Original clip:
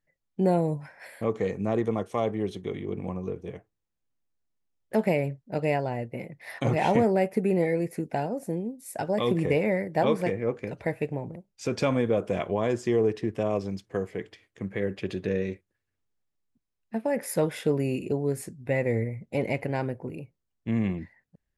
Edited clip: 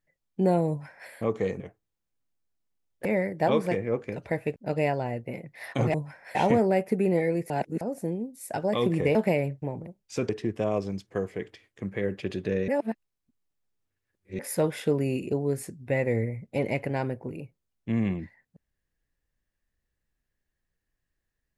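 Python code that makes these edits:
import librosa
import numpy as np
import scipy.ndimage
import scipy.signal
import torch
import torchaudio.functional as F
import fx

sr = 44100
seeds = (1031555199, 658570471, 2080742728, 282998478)

y = fx.edit(x, sr, fx.duplicate(start_s=0.69, length_s=0.41, to_s=6.8),
    fx.cut(start_s=1.6, length_s=1.9),
    fx.swap(start_s=4.95, length_s=0.47, other_s=9.6, other_length_s=1.51),
    fx.reverse_span(start_s=7.95, length_s=0.31),
    fx.cut(start_s=11.78, length_s=1.3),
    fx.reverse_span(start_s=15.47, length_s=1.71), tone=tone)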